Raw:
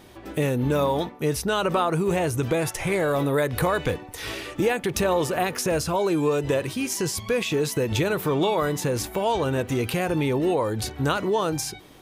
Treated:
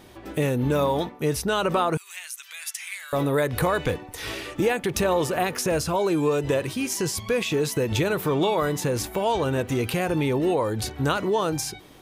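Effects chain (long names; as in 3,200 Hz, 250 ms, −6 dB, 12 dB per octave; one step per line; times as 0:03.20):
0:01.97–0:03.13: Bessel high-pass filter 2,600 Hz, order 4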